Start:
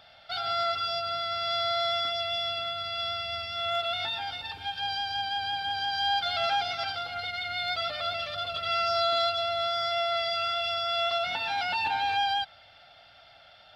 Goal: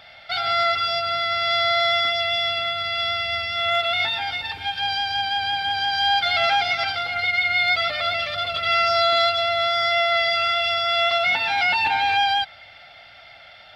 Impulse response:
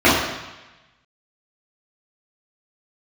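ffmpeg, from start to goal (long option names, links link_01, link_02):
-af "equalizer=frequency=2100:width_type=o:width=0.36:gain=10,volume=6.5dB"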